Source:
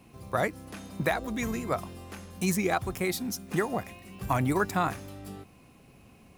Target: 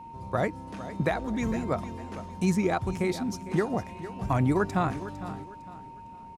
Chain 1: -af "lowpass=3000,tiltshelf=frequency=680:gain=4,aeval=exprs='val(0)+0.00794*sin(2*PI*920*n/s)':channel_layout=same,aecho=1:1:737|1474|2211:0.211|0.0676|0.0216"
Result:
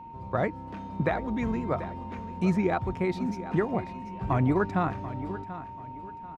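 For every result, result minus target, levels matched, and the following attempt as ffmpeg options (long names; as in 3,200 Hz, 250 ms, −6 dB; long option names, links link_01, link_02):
8,000 Hz band −13.5 dB; echo 282 ms late
-af "lowpass=7700,tiltshelf=frequency=680:gain=4,aeval=exprs='val(0)+0.00794*sin(2*PI*920*n/s)':channel_layout=same,aecho=1:1:737|1474|2211:0.211|0.0676|0.0216"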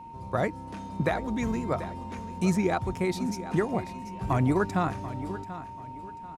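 echo 282 ms late
-af "lowpass=7700,tiltshelf=frequency=680:gain=4,aeval=exprs='val(0)+0.00794*sin(2*PI*920*n/s)':channel_layout=same,aecho=1:1:455|910|1365:0.211|0.0676|0.0216"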